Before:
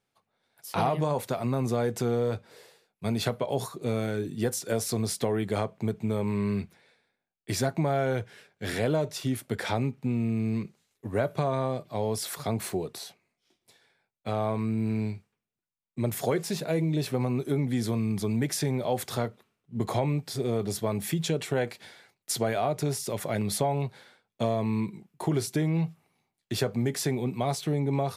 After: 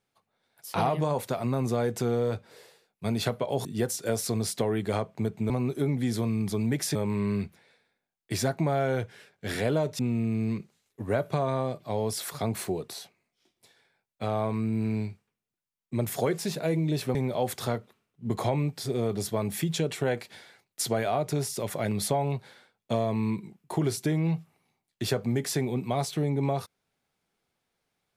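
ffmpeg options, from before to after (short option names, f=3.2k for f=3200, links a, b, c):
-filter_complex "[0:a]asplit=6[a][b][c][d][e][f];[a]atrim=end=3.652[g];[b]atrim=start=4.278:end=6.132[h];[c]atrim=start=17.198:end=18.652[i];[d]atrim=start=6.128:end=9.172[j];[e]atrim=start=10.038:end=17.202[k];[f]atrim=start=18.648[l];[g][h]acrossfade=d=0.004:c1=hsin:c2=hsin[m];[m][i]acrossfade=d=0.004:c1=hsin:c2=hsin[n];[n][j]acrossfade=d=0.004:c1=hsin:c2=hsin[o];[o][k]acrossfade=d=0.004:c1=hsin:c2=hsin[p];[p][l]acrossfade=d=0.004:c1=hsin:c2=hsin"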